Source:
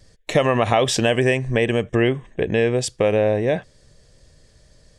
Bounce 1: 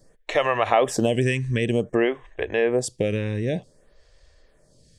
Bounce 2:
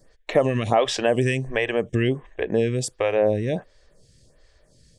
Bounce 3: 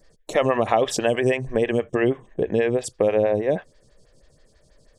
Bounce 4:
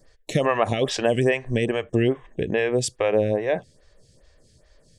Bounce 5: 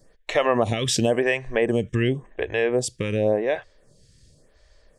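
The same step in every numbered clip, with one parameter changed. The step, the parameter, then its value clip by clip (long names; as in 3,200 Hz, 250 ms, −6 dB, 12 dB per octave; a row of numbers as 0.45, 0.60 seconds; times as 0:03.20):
phaser with staggered stages, speed: 0.54, 1.4, 6.2, 2.4, 0.91 Hertz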